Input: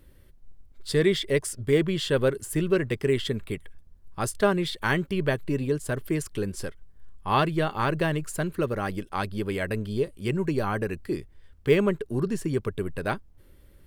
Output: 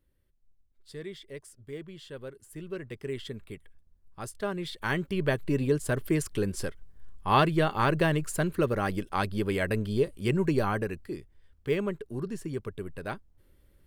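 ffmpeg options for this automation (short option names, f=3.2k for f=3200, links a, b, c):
-af "volume=0.5dB,afade=t=in:st=2.38:d=0.83:silence=0.398107,afade=t=in:st=4.45:d=1.22:silence=0.281838,afade=t=out:st=10.58:d=0.53:silence=0.398107"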